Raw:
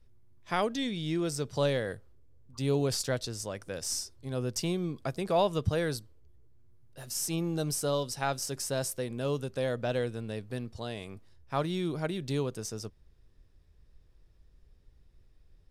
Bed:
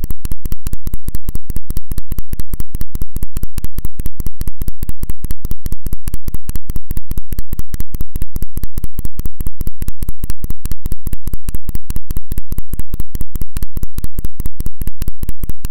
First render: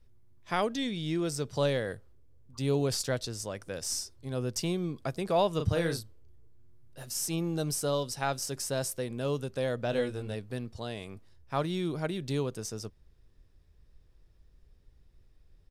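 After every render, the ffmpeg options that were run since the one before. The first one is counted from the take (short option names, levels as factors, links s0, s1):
-filter_complex "[0:a]asettb=1/sr,asplit=3[s0][s1][s2];[s0]atrim=end=5.564[s3];[s1]atrim=start=5.56:end=7.03,asetpts=PTS-STARTPTS,afade=t=in:d=0.004:c=qsin,afade=t=out:st=1.466:d=0.004:c=qsin,asplit=2[s4][s5];[s5]adelay=36,volume=0.531[s6];[s4][s6]amix=inputs=2:normalize=0,atrim=end_sample=64827[s7];[s2]atrim=start=7.026[s8];[s3][s7]acrossfade=d=0.004:c1=hsin:c2=qsin[s9];[s9][s8]acrossfade=d=0.004:c1=qsin:c2=hsin,asplit=3[s10][s11][s12];[s10]afade=t=out:st=9.92:d=0.02[s13];[s11]asplit=2[s14][s15];[s15]adelay=20,volume=0.668[s16];[s14][s16]amix=inputs=2:normalize=0,afade=t=in:st=9.92:d=0.02,afade=t=out:st=10.34:d=0.02[s17];[s12]afade=t=in:st=10.34:d=0.02[s18];[s13][s17][s18]amix=inputs=3:normalize=0"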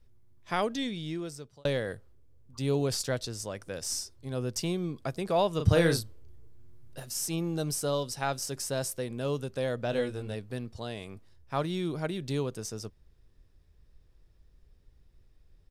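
-filter_complex "[0:a]asettb=1/sr,asplit=3[s0][s1][s2];[s0]atrim=end=5.654[s3];[s1]atrim=start=5.65:end=7,asetpts=PTS-STARTPTS,afade=t=in:d=0.004:c=qsin,afade=t=out:st=1.346:d=0.004:c=qsin,acontrast=48[s4];[s2]atrim=start=6.996[s5];[s3][s4]acrossfade=d=0.004:c1=hsin:c2=qsin[s6];[s6][s5]acrossfade=d=0.004:c1=qsin:c2=hsin,asplit=2[s7][s8];[s7]atrim=end=1.65,asetpts=PTS-STARTPTS,afade=t=out:st=0.81:d=0.84[s9];[s8]atrim=start=1.65,asetpts=PTS-STARTPTS,afade=t=in:d=0.004:c=hsin[s10];[s9][s10]concat=n=2:v=0:a=1"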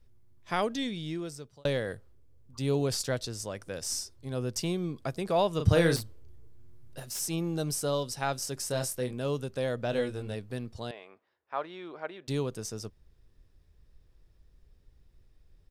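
-filter_complex "[0:a]asettb=1/sr,asplit=3[s0][s1][s2];[s0]atrim=end=5.964[s3];[s1]atrim=start=5.96:end=7.2,asetpts=PTS-STARTPTS,afade=t=in:d=0.004:c=qsin,afade=t=out:st=1.236:d=0.004:c=qsin,aeval=exprs='0.0316*(abs(mod(val(0)/0.0316+3,4)-2)-1)':c=same[s4];[s2]atrim=start=7.196[s5];[s3][s4]acrossfade=d=0.004:c1=hsin:c2=qsin[s6];[s6][s5]acrossfade=d=0.004:c1=qsin:c2=hsin,asettb=1/sr,asplit=3[s7][s8][s9];[s7]atrim=end=8.684[s10];[s8]atrim=start=8.68:end=9.14,asetpts=PTS-STARTPTS,afade=t=in:d=0.004:c=qsin,afade=t=out:st=0.456:d=0.004:c=qsin,asplit=2[s11][s12];[s12]adelay=24,volume=0.473[s13];[s11][s13]amix=inputs=2:normalize=0,atrim=end_sample=20286[s14];[s9]atrim=start=9.136[s15];[s10][s14]acrossfade=d=0.004:c1=hsin:c2=qsin[s16];[s16][s15]acrossfade=d=0.004:c1=qsin:c2=hsin,asettb=1/sr,asplit=3[s17][s18][s19];[s17]atrim=end=10.914[s20];[s18]atrim=start=10.91:end=12.28,asetpts=PTS-STARTPTS,afade=t=in:d=0.004:c=qsin,afade=t=out:st=1.366:d=0.004:c=qsin,highpass=590,lowpass=2100[s21];[s19]atrim=start=12.276[s22];[s20][s21]acrossfade=d=0.004:c1=hsin:c2=qsin[s23];[s23][s22]acrossfade=d=0.004:c1=qsin:c2=hsin"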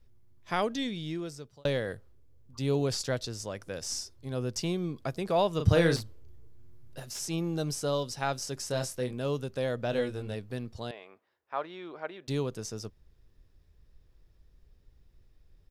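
-filter_complex "[0:a]acrossover=split=9900[s0][s1];[s1]acompressor=threshold=0.00158:ratio=4:attack=1:release=60[s2];[s0][s2]amix=inputs=2:normalize=0,equalizer=f=8700:w=5.4:g=-6"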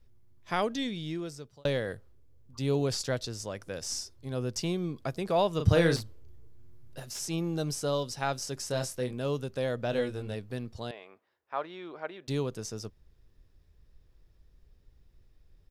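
-af anull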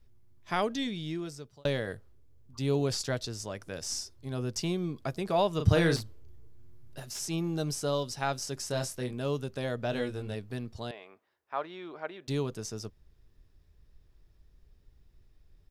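-af "bandreject=f=510:w=12"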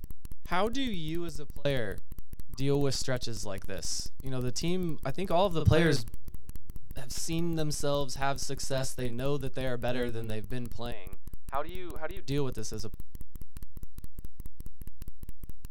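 -filter_complex "[1:a]volume=0.0794[s0];[0:a][s0]amix=inputs=2:normalize=0"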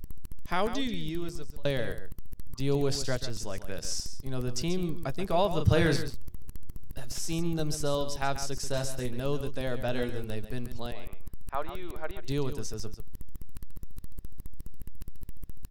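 -af "aecho=1:1:137:0.282"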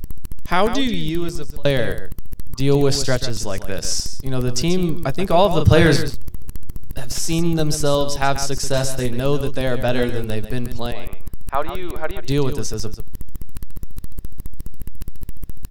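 -af "volume=3.76,alimiter=limit=0.891:level=0:latency=1"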